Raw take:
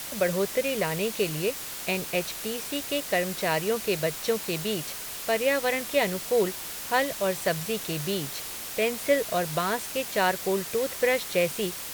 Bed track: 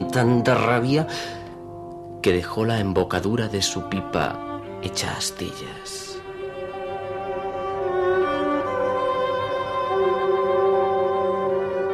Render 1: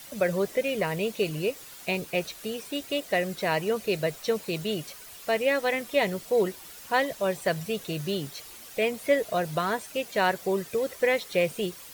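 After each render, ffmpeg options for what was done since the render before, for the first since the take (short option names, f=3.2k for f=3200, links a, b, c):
-af "afftdn=nr=11:nf=-37"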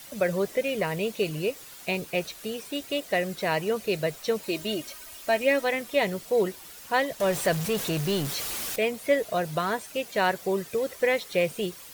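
-filter_complex "[0:a]asettb=1/sr,asplit=3[a][b][c];[a]atrim=end=4.434[d];[b]atrim=start=4.43:end=5.64,asetpts=PTS-STARTPTS,afade=t=in:d=0.004:c=qsin,afade=t=out:st=1.206:d=0.004:c=qsin,aecho=1:1:3.2:0.65,atrim=end_sample=53361[e];[c]atrim=start=5.636[f];[d][e]acrossfade=d=0.004:c1=hsin:c2=qsin[g];[g][f]acrossfade=d=0.004:c1=qsin:c2=hsin,asettb=1/sr,asplit=3[h][i][j];[h]atrim=end=7.204[k];[i]atrim=start=7.2:end=8.76,asetpts=PTS-STARTPTS,afade=t=in:d=0.004:c=qsin,afade=t=out:st=1.556:d=0.004:c=qsin,aeval=exprs='val(0)+0.5*0.0376*sgn(val(0))':c=same[l];[j]atrim=start=8.756[m];[k][l]acrossfade=d=0.004:c1=hsin:c2=qsin[n];[n][m]acrossfade=d=0.004:c1=qsin:c2=hsin"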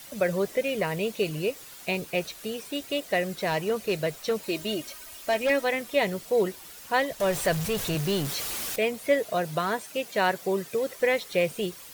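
-filter_complex "[0:a]asettb=1/sr,asplit=3[a][b][c];[a]atrim=end=3.404[d];[b]atrim=start=3.4:end=5.5,asetpts=PTS-STARTPTS,afade=t=in:d=0.004:c=qsin,afade=t=out:st=2.096:d=0.004:c=qsin,asoftclip=type=hard:threshold=-20dB[e];[c]atrim=start=5.496[f];[d][e]acrossfade=d=0.004:c1=hsin:c2=qsin[g];[g][f]acrossfade=d=0.004:c1=qsin:c2=hsin,asettb=1/sr,asplit=3[h][i][j];[h]atrim=end=6.924[k];[i]atrim=start=6.92:end=7.95,asetpts=PTS-STARTPTS,afade=t=in:d=0.004:c=qsin,afade=t=out:st=1.026:d=0.004:c=qsin,asubboost=boost=10.5:cutoff=110[l];[j]atrim=start=7.946[m];[k][l]acrossfade=d=0.004:c1=hsin:c2=qsin[n];[n][m]acrossfade=d=0.004:c1=qsin:c2=hsin,asettb=1/sr,asplit=3[o][p][q];[o]atrim=end=9.204[r];[p]atrim=start=9.2:end=10.98,asetpts=PTS-STARTPTS,afade=t=in:d=0.004:c=qsin,afade=t=out:st=1.776:d=0.004:c=qsin,highpass=97[s];[q]atrim=start=10.976[t];[r][s]acrossfade=d=0.004:c1=hsin:c2=qsin[u];[u][t]acrossfade=d=0.004:c1=qsin:c2=hsin"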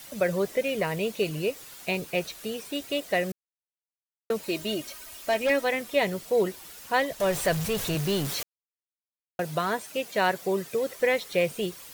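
-filter_complex "[0:a]asplit=5[a][b][c][d][e];[a]atrim=end=3.32,asetpts=PTS-STARTPTS,afade=t=out:st=3.316:d=0.004:c=hsin[f];[b]atrim=start=3.32:end=4.3,asetpts=PTS-STARTPTS,volume=0[g];[c]atrim=start=4.3:end=8.43,asetpts=PTS-STARTPTS,afade=t=in:d=0.004:c=hsin,afade=t=out:st=4.126:d=0.004:c=hsin[h];[d]atrim=start=8.43:end=9.39,asetpts=PTS-STARTPTS,volume=0[i];[e]atrim=start=9.39,asetpts=PTS-STARTPTS,afade=t=in:d=0.004:c=hsin[j];[f][g][h][i][j]concat=n=5:v=0:a=1"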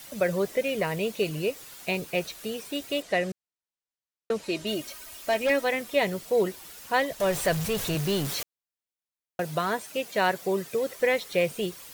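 -filter_complex "[0:a]asettb=1/sr,asplit=3[a][b][c];[a]atrim=end=3.024[d];[b]atrim=start=3.02:end=4.67,asetpts=PTS-STARTPTS,afade=t=in:d=0.004:c=qsin,afade=t=out:st=1.646:d=0.004:c=qsin,lowpass=8.4k[e];[c]atrim=start=4.666[f];[d][e]acrossfade=d=0.004:c1=hsin:c2=qsin[g];[g][f]acrossfade=d=0.004:c1=qsin:c2=hsin"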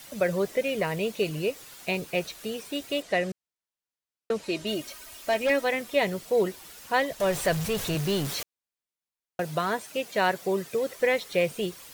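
-af "highshelf=f=11k:g=-3.5"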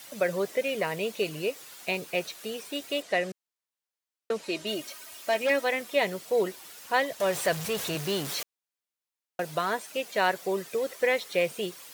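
-af "highpass=f=320:p=1"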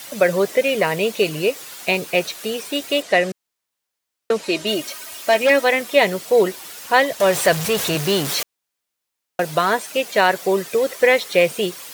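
-af "volume=10.5dB,alimiter=limit=-2dB:level=0:latency=1"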